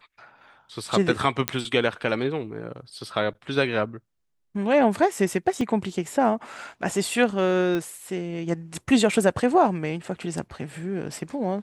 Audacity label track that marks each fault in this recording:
1.480000	1.480000	pop -4 dBFS
5.610000	5.610000	dropout 2.7 ms
7.750000	7.750000	pop -16 dBFS

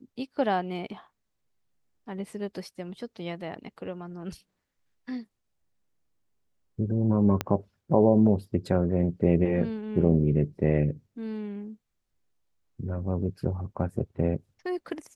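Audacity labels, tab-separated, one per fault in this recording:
7.410000	7.410000	pop -12 dBFS

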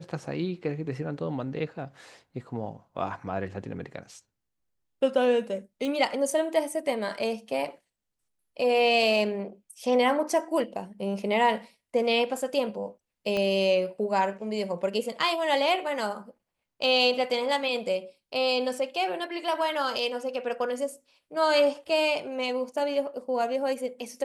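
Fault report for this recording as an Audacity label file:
5.850000	5.850000	pop -21 dBFS
13.370000	13.370000	pop -17 dBFS

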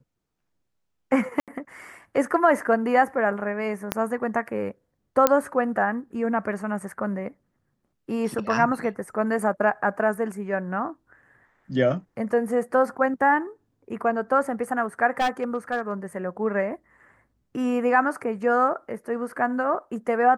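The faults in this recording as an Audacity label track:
1.400000	1.480000	dropout 77 ms
3.920000	3.920000	pop -7 dBFS
5.270000	5.270000	pop -3 dBFS
15.200000	15.920000	clipped -19 dBFS

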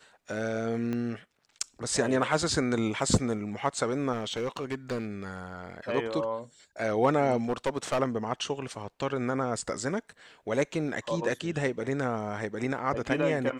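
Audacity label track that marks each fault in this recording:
0.930000	0.930000	pop -21 dBFS
4.130000	5.070000	clipped -26.5 dBFS
7.480000	8.010000	clipped -22.5 dBFS

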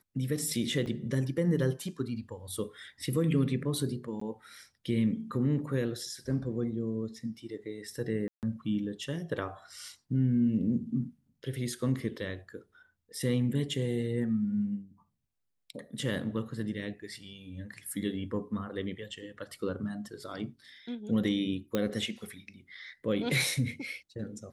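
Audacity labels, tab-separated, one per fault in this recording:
0.860000	0.860000	dropout 4.5 ms
4.200000	4.210000	dropout 14 ms
8.280000	8.430000	dropout 148 ms
21.750000	21.750000	pop -16 dBFS

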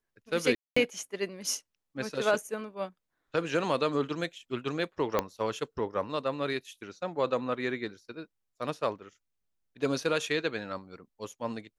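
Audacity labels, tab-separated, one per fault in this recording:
0.550000	0.770000	dropout 215 ms
5.190000	5.190000	pop -12 dBFS

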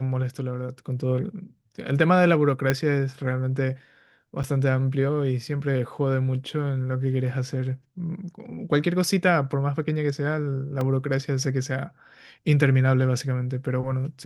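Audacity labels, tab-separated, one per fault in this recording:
2.700000	2.700000	pop -7 dBFS
4.430000	4.440000	dropout 7.9 ms
10.810000	10.810000	dropout 2.5 ms

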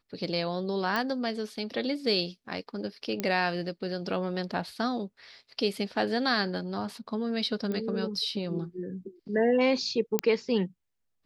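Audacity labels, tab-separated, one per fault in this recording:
0.960000	0.960000	pop -16 dBFS
3.200000	3.200000	pop -15 dBFS
7.720000	7.720000	pop -22 dBFS
10.190000	10.190000	pop -9 dBFS

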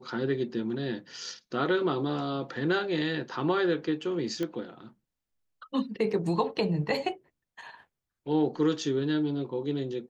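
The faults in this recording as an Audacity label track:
4.430000	4.430000	pop -20 dBFS

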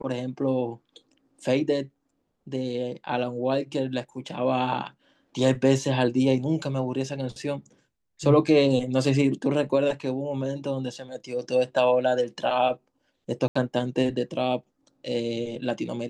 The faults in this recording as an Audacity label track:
13.480000	13.550000	dropout 75 ms

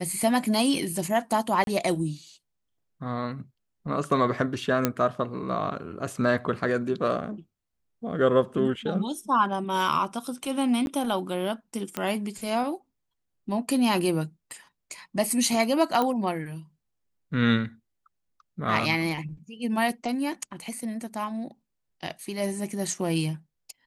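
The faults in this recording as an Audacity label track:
1.640000	1.670000	dropout 32 ms
4.850000	4.850000	pop -7 dBFS
10.860000	10.870000	dropout 11 ms
11.970000	11.970000	pop -13 dBFS
16.020000	16.020000	pop -13 dBFS

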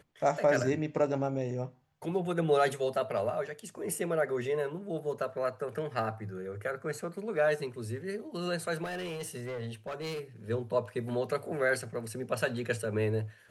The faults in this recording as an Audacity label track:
8.830000	10.200000	clipped -33.5 dBFS

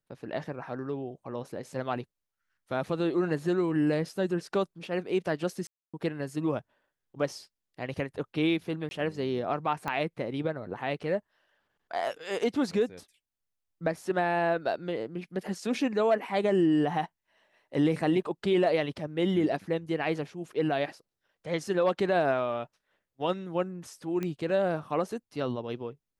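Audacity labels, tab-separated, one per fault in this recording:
5.670000	5.940000	dropout 266 ms
8.890000	8.910000	dropout 20 ms
9.880000	9.880000	pop -18 dBFS
24.230000	24.230000	pop -20 dBFS

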